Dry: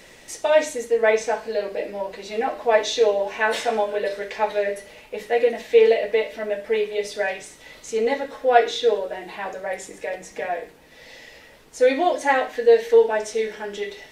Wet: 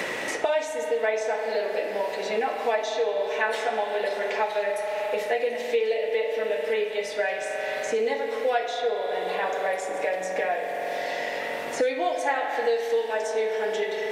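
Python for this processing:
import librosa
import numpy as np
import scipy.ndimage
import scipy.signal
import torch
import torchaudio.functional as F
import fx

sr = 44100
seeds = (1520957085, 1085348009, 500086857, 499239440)

y = fx.low_shelf(x, sr, hz=320.0, db=-9.0)
y = fx.rev_spring(y, sr, rt60_s=3.0, pass_ms=(43,), chirp_ms=35, drr_db=4.5)
y = fx.band_squash(y, sr, depth_pct=100)
y = y * librosa.db_to_amplitude(-4.5)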